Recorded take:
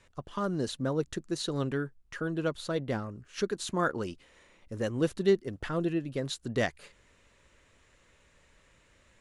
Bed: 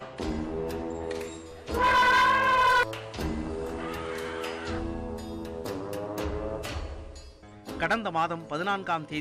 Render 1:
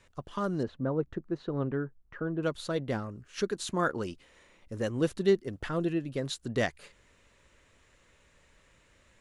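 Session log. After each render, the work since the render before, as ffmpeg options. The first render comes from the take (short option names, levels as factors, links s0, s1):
-filter_complex "[0:a]asettb=1/sr,asplit=3[s0][s1][s2];[s0]atrim=end=0.634[s3];[s1]atrim=start=0.63:end=2.43,asetpts=PTS-STARTPTS,afade=t=in:d=0.004:c=qsin,afade=t=out:st=1.796:d=0.004:c=qsin,lowpass=1400[s4];[s2]atrim=start=2.426[s5];[s3][s4]acrossfade=d=0.004:c1=hsin:c2=qsin[s6];[s6][s5]acrossfade=d=0.004:c1=qsin:c2=hsin"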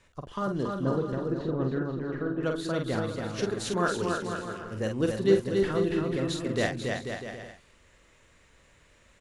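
-filter_complex "[0:a]asplit=2[s0][s1];[s1]adelay=46,volume=0.531[s2];[s0][s2]amix=inputs=2:normalize=0,aecho=1:1:280|490|647.5|765.6|854.2:0.631|0.398|0.251|0.158|0.1"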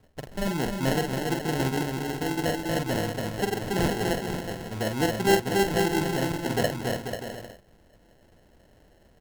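-filter_complex "[0:a]asplit=2[s0][s1];[s1]aeval=exprs='(mod(6.31*val(0)+1,2)-1)/6.31':c=same,volume=0.282[s2];[s0][s2]amix=inputs=2:normalize=0,acrusher=samples=37:mix=1:aa=0.000001"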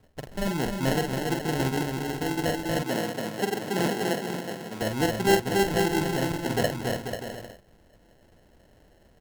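-filter_complex "[0:a]asettb=1/sr,asplit=3[s0][s1][s2];[s0]atrim=end=2.824[s3];[s1]atrim=start=2.82:end=4.82,asetpts=PTS-STARTPTS,afade=t=in:d=0.004:c=qsin,afade=t=out:st=1.996:d=0.004:c=qsin,highpass=f=150:w=0.5412,highpass=f=150:w=1.3066[s4];[s2]atrim=start=4.816[s5];[s3][s4]acrossfade=d=0.004:c1=hsin:c2=qsin[s6];[s6][s5]acrossfade=d=0.004:c1=qsin:c2=hsin"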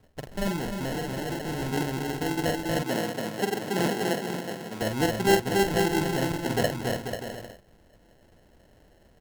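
-filter_complex "[0:a]asettb=1/sr,asplit=3[s0][s1][s2];[s0]atrim=end=0.564[s3];[s1]atrim=start=0.56:end=1.72,asetpts=PTS-STARTPTS,afade=t=in:d=0.004:c=qsin,afade=t=out:st=1.156:d=0.004:c=qsin,asoftclip=type=hard:threshold=0.0376[s4];[s2]atrim=start=1.716[s5];[s3][s4]acrossfade=d=0.004:c1=hsin:c2=qsin[s6];[s6][s5]acrossfade=d=0.004:c1=qsin:c2=hsin"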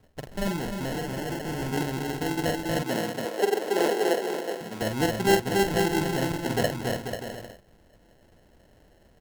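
-filter_complex "[0:a]asettb=1/sr,asplit=3[s0][s1][s2];[s0]atrim=end=1.004[s3];[s1]atrim=start=1:end=1.78,asetpts=PTS-STARTPTS,afade=t=in:d=0.004:c=qsin,afade=t=out:st=0.776:d=0.004:c=qsin,bandreject=f=3900:w=12[s4];[s2]atrim=start=1.776[s5];[s3][s4]acrossfade=d=0.004:c1=hsin:c2=qsin[s6];[s6][s5]acrossfade=d=0.004:c1=qsin:c2=hsin,asettb=1/sr,asplit=3[s7][s8][s9];[s7]atrim=end=3.254[s10];[s8]atrim=start=3.25:end=4.61,asetpts=PTS-STARTPTS,afade=t=in:d=0.004:c=qsin,afade=t=out:st=1.356:d=0.004:c=qsin,highpass=f=420:t=q:w=2.1[s11];[s9]atrim=start=4.606[s12];[s10][s11]acrossfade=d=0.004:c1=hsin:c2=qsin[s13];[s13][s12]acrossfade=d=0.004:c1=qsin:c2=hsin"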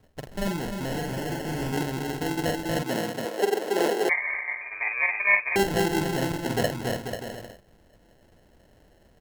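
-filter_complex "[0:a]asettb=1/sr,asplit=3[s0][s1][s2];[s0]atrim=end=0.864[s3];[s1]atrim=start=0.86:end=1.72,asetpts=PTS-STARTPTS,afade=t=in:d=0.004:c=qsin,afade=t=out:st=0.856:d=0.004:c=qsin,asplit=2[s4][s5];[s5]adelay=39,volume=0.473[s6];[s4][s6]amix=inputs=2:normalize=0,atrim=end_sample=37926[s7];[s2]atrim=start=1.716[s8];[s3][s7]acrossfade=d=0.004:c1=hsin:c2=qsin[s9];[s9][s8]acrossfade=d=0.004:c1=qsin:c2=hsin,asettb=1/sr,asplit=3[s10][s11][s12];[s10]atrim=end=4.094[s13];[s11]atrim=start=4.09:end=5.56,asetpts=PTS-STARTPTS,afade=t=in:d=0.004:c=qsin,afade=t=out:st=1.466:d=0.004:c=qsin,lowpass=f=2200:t=q:w=0.5098,lowpass=f=2200:t=q:w=0.6013,lowpass=f=2200:t=q:w=0.9,lowpass=f=2200:t=q:w=2.563,afreqshift=-2600[s14];[s12]atrim=start=5.556[s15];[s13][s14]acrossfade=d=0.004:c1=hsin:c2=qsin[s16];[s16][s15]acrossfade=d=0.004:c1=qsin:c2=hsin"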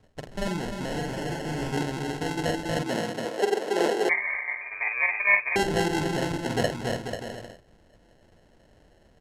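-af "lowpass=9000,bandreject=f=65.52:t=h:w=4,bandreject=f=131.04:t=h:w=4,bandreject=f=196.56:t=h:w=4,bandreject=f=262.08:t=h:w=4,bandreject=f=327.6:t=h:w=4,bandreject=f=393.12:t=h:w=4"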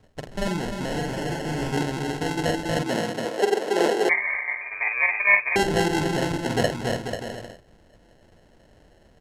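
-af "volume=1.41"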